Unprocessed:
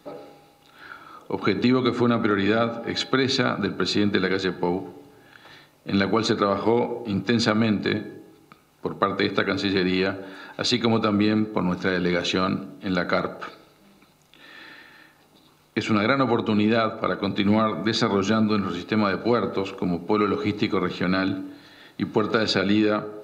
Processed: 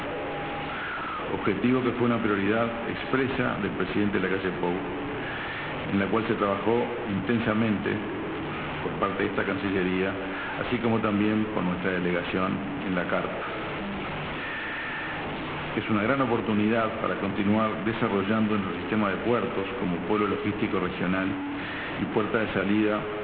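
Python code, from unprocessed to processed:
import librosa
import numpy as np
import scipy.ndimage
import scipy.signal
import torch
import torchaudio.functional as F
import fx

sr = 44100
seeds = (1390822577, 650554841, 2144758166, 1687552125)

y = fx.delta_mod(x, sr, bps=16000, step_db=-22.0)
y = y * 10.0 ** (-3.5 / 20.0)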